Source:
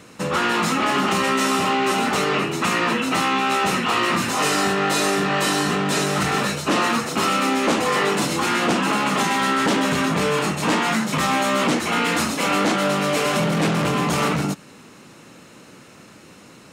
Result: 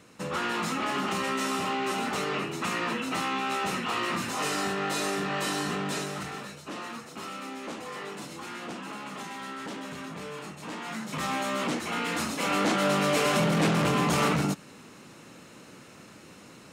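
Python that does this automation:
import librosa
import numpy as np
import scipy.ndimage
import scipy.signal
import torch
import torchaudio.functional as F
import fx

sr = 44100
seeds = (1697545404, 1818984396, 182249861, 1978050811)

y = fx.gain(x, sr, db=fx.line((5.87, -9.5), (6.46, -18.5), (10.73, -18.5), (11.26, -10.0), (12.05, -10.0), (12.95, -4.0)))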